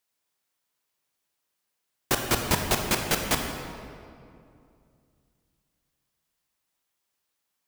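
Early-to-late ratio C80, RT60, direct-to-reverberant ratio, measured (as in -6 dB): 5.0 dB, 2.5 s, 3.0 dB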